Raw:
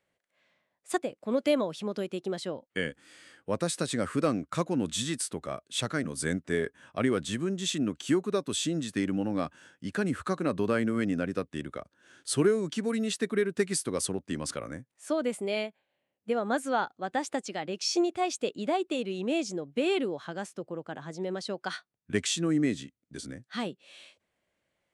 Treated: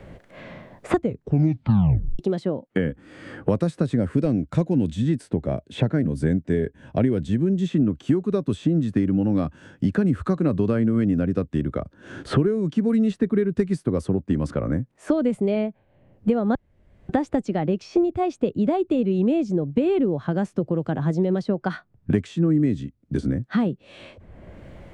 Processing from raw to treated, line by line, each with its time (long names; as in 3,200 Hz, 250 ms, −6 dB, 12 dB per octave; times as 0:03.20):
0:00.95: tape stop 1.24 s
0:03.97–0:07.67: parametric band 1,200 Hz −13 dB 0.29 octaves
0:16.55–0:17.09: fill with room tone
whole clip: spectral tilt −4.5 dB per octave; multiband upward and downward compressor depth 100%